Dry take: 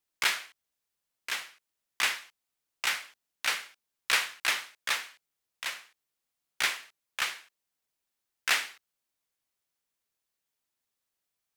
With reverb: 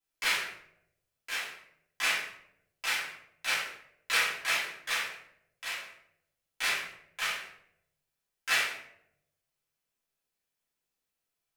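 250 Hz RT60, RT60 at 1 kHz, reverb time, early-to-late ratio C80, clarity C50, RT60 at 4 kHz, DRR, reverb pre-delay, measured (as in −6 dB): 0.95 s, 0.65 s, 0.75 s, 6.5 dB, 2.5 dB, 0.45 s, −10.5 dB, 3 ms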